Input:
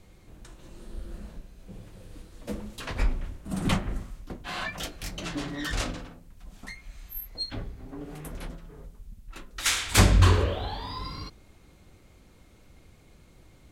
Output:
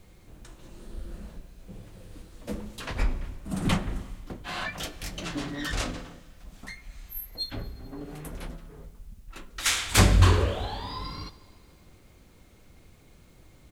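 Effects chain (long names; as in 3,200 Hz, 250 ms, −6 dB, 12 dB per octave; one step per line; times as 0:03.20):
four-comb reverb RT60 2.1 s, combs from 33 ms, DRR 17.5 dB
pitch-shifted copies added −3 semitones −16 dB
bit-depth reduction 12 bits, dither triangular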